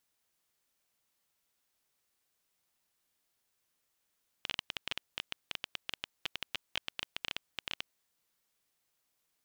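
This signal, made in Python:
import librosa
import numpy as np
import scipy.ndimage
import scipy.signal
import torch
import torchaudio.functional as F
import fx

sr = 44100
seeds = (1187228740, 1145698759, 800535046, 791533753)

y = fx.geiger_clicks(sr, seeds[0], length_s=3.48, per_s=13.0, level_db=-17.0)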